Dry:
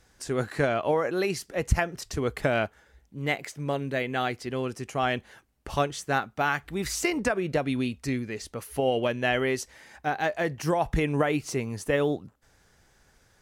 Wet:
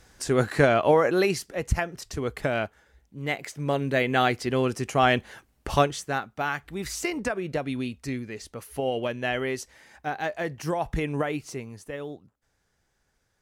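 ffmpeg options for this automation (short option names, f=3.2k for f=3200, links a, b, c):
-af "volume=13dB,afade=t=out:st=1.13:d=0.46:silence=0.446684,afade=t=in:st=3.28:d=0.87:silence=0.421697,afade=t=out:st=5.72:d=0.41:silence=0.375837,afade=t=out:st=11.18:d=0.73:silence=0.375837"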